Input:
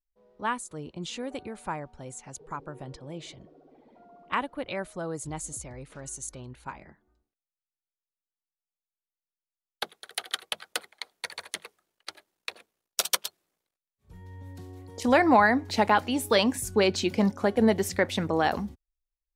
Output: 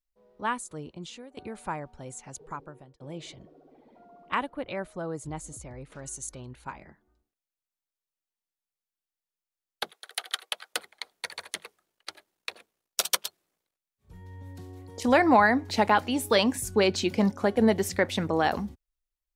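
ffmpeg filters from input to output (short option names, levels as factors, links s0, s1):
-filter_complex "[0:a]asettb=1/sr,asplit=3[s0][s1][s2];[s0]atrim=end=4.494[s3];[s1]atrim=start=4.49:end=5.92,asetpts=PTS-STARTPTS,afade=t=in:d=0.004:c=qsin,afade=t=out:st=1.426:d=0.004:c=qsin,highshelf=f=2900:g=-7[s4];[s2]atrim=start=5.916[s5];[s3][s4]acrossfade=d=0.004:c1=hsin:c2=qsin[s6];[s6][s5]acrossfade=d=0.004:c1=qsin:c2=hsin,asettb=1/sr,asplit=3[s7][s8][s9];[s7]atrim=end=9.914[s10];[s8]atrim=start=9.91:end=10.74,asetpts=PTS-STARTPTS,afade=t=in:d=0.004:c=qsin,afade=t=out:st=0.826:d=0.004:c=qsin,highpass=510[s11];[s9]atrim=start=10.736[s12];[s10][s11]acrossfade=d=0.004:c1=hsin:c2=qsin[s13];[s13][s12]acrossfade=d=0.004:c1=qsin:c2=hsin,asplit=3[s14][s15][s16];[s14]atrim=end=1.37,asetpts=PTS-STARTPTS,afade=t=out:st=0.77:d=0.6:silence=0.1[s17];[s15]atrim=start=1.37:end=3,asetpts=PTS-STARTPTS,afade=t=in:d=0.004:c=hsin:silence=0.1,afade=t=out:st=1.1:d=0.53[s18];[s16]atrim=start=3,asetpts=PTS-STARTPTS,afade=t=in:d=0.004:c=hsin[s19];[s17][s18][s19]concat=n=3:v=0:a=1"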